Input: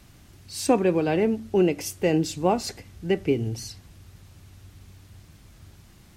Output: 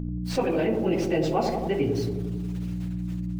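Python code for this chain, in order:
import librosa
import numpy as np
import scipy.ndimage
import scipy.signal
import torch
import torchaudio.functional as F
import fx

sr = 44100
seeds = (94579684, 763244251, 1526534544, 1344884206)

y = fx.tracing_dist(x, sr, depth_ms=0.032)
y = scipy.signal.sosfilt(scipy.signal.butter(2, 3800.0, 'lowpass', fs=sr, output='sos'), y)
y = fx.low_shelf(y, sr, hz=190.0, db=-8.5)
y = fx.rider(y, sr, range_db=3, speed_s=2.0)
y = np.where(np.abs(y) >= 10.0 ** (-47.5 / 20.0), y, 0.0)
y = fx.dmg_buzz(y, sr, base_hz=60.0, harmonics=5, level_db=-42.0, tilt_db=-4, odd_only=False)
y = fx.stretch_vocoder_free(y, sr, factor=0.55)
y = fx.echo_wet_lowpass(y, sr, ms=89, feedback_pct=61, hz=750.0, wet_db=-5.0)
y = fx.room_shoebox(y, sr, seeds[0], volume_m3=660.0, walls='furnished', distance_m=0.71)
y = fx.env_flatten(y, sr, amount_pct=50)
y = F.gain(torch.from_numpy(y), 1.5).numpy()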